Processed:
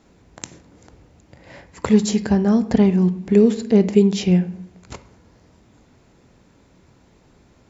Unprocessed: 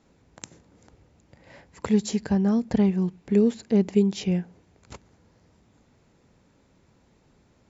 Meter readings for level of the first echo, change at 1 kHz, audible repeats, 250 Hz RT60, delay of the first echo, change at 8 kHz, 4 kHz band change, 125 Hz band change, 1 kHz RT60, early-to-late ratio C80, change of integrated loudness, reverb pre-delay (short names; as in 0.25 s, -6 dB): none, +7.0 dB, none, 1.1 s, none, n/a, +7.0 dB, +7.0 dB, 0.70 s, 18.5 dB, +6.5 dB, 3 ms